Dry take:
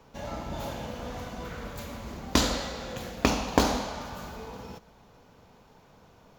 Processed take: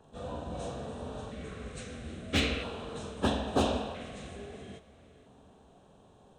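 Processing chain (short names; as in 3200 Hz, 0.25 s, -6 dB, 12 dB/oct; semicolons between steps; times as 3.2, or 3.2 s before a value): inharmonic rescaling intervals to 83%; hard clip -19 dBFS, distortion -18 dB; LFO notch square 0.38 Hz 910–2100 Hz; on a send: reverb RT60 5.5 s, pre-delay 57 ms, DRR 21 dB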